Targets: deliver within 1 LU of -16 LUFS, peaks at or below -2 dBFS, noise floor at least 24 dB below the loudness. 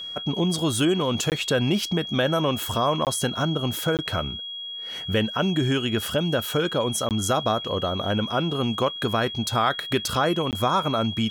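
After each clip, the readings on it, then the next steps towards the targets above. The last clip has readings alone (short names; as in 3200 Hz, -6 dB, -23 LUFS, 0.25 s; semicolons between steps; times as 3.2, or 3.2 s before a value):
dropouts 5; longest dropout 18 ms; steady tone 3300 Hz; tone level -32 dBFS; loudness -24.0 LUFS; peak -9.0 dBFS; loudness target -16.0 LUFS
-> interpolate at 1.3/3.05/3.97/7.09/10.51, 18 ms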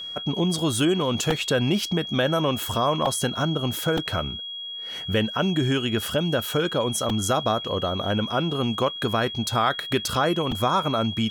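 dropouts 0; steady tone 3300 Hz; tone level -32 dBFS
-> notch 3300 Hz, Q 30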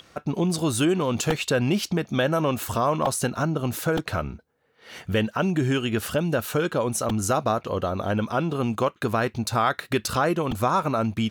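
steady tone none; loudness -25.0 LUFS; peak -9.0 dBFS; loudness target -16.0 LUFS
-> gain +9 dB; limiter -2 dBFS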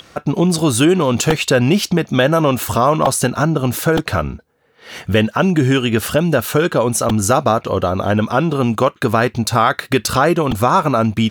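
loudness -16.0 LUFS; peak -2.0 dBFS; noise floor -50 dBFS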